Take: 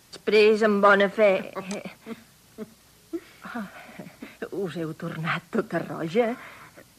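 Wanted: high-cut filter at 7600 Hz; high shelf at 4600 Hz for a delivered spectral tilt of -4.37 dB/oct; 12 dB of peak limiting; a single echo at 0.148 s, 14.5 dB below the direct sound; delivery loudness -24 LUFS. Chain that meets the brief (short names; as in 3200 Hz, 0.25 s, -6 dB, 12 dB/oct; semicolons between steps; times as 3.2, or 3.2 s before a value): LPF 7600 Hz; high shelf 4600 Hz +5.5 dB; limiter -19 dBFS; echo 0.148 s -14.5 dB; gain +6.5 dB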